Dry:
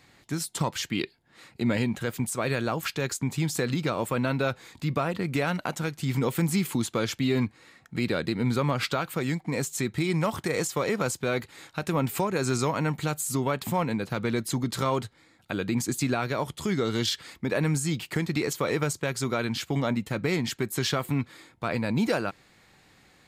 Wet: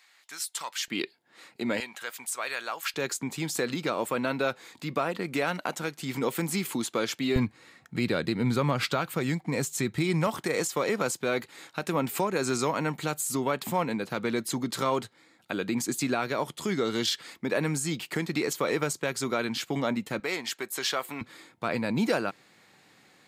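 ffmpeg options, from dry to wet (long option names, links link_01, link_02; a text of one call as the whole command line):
ffmpeg -i in.wav -af "asetnsamples=nb_out_samples=441:pad=0,asendcmd='0.88 highpass f 290;1.8 highpass f 930;2.94 highpass f 250;7.36 highpass f 93;10.27 highpass f 200;20.2 highpass f 510;21.21 highpass f 160',highpass=1200" out.wav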